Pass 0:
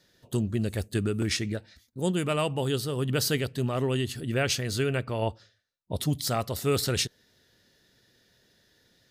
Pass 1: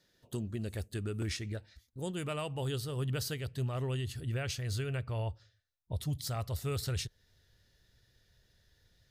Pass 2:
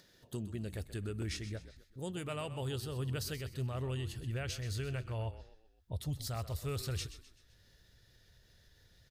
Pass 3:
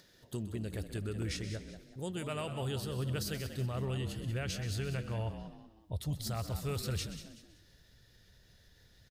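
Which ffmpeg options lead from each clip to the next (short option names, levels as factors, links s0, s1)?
-af "asubboost=boost=10.5:cutoff=76,alimiter=limit=0.106:level=0:latency=1:release=267,volume=0.447"
-filter_complex "[0:a]asplit=5[s0][s1][s2][s3][s4];[s1]adelay=128,afreqshift=-40,volume=0.224[s5];[s2]adelay=256,afreqshift=-80,volume=0.0891[s6];[s3]adelay=384,afreqshift=-120,volume=0.0359[s7];[s4]adelay=512,afreqshift=-160,volume=0.0143[s8];[s0][s5][s6][s7][s8]amix=inputs=5:normalize=0,acompressor=mode=upward:threshold=0.00251:ratio=2.5,volume=0.708"
-filter_complex "[0:a]asplit=4[s0][s1][s2][s3];[s1]adelay=188,afreqshift=72,volume=0.282[s4];[s2]adelay=376,afreqshift=144,volume=0.0902[s5];[s3]adelay=564,afreqshift=216,volume=0.0288[s6];[s0][s4][s5][s6]amix=inputs=4:normalize=0,volume=1.19"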